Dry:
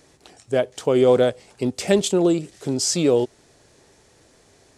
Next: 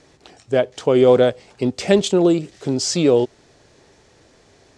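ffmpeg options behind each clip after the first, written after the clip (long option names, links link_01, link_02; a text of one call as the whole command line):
ffmpeg -i in.wav -af "lowpass=6000,volume=3dB" out.wav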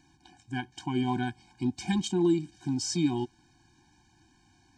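ffmpeg -i in.wav -af "afftfilt=real='re*eq(mod(floor(b*sr/1024/360),2),0)':imag='im*eq(mod(floor(b*sr/1024/360),2),0)':win_size=1024:overlap=0.75,volume=-7.5dB" out.wav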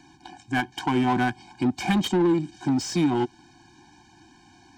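ffmpeg -i in.wav -filter_complex "[0:a]acrossover=split=210[link_01][link_02];[link_02]acompressor=threshold=-33dB:ratio=2.5[link_03];[link_01][link_03]amix=inputs=2:normalize=0,asplit=2[link_04][link_05];[link_05]highpass=frequency=720:poles=1,volume=18dB,asoftclip=type=tanh:threshold=-20dB[link_06];[link_04][link_06]amix=inputs=2:normalize=0,lowpass=frequency=4100:poles=1,volume=-6dB,asplit=2[link_07][link_08];[link_08]adynamicsmooth=sensitivity=5.5:basefreq=780,volume=2dB[link_09];[link_07][link_09]amix=inputs=2:normalize=0" out.wav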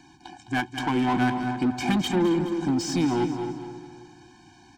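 ffmpeg -i in.wav -filter_complex "[0:a]asplit=2[link_01][link_02];[link_02]aecho=0:1:210|420|630|840:0.282|0.118|0.0497|0.0209[link_03];[link_01][link_03]amix=inputs=2:normalize=0,asoftclip=type=tanh:threshold=-16.5dB,asplit=2[link_04][link_05];[link_05]adelay=266,lowpass=frequency=1700:poles=1,volume=-8dB,asplit=2[link_06][link_07];[link_07]adelay=266,lowpass=frequency=1700:poles=1,volume=0.35,asplit=2[link_08][link_09];[link_09]adelay=266,lowpass=frequency=1700:poles=1,volume=0.35,asplit=2[link_10][link_11];[link_11]adelay=266,lowpass=frequency=1700:poles=1,volume=0.35[link_12];[link_06][link_08][link_10][link_12]amix=inputs=4:normalize=0[link_13];[link_04][link_13]amix=inputs=2:normalize=0" out.wav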